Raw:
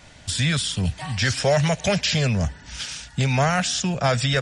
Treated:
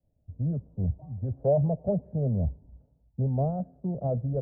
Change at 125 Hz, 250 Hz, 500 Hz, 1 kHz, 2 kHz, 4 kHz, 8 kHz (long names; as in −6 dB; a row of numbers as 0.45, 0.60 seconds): −5.0 dB, −5.5 dB, −4.5 dB, −13.5 dB, below −40 dB, below −40 dB, below −40 dB